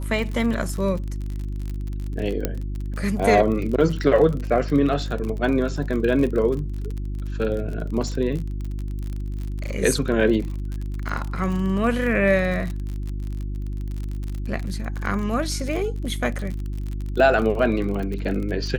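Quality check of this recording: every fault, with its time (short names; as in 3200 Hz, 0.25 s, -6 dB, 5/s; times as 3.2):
crackle 43/s -28 dBFS
hum 50 Hz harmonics 7 -28 dBFS
2.45 pop -8 dBFS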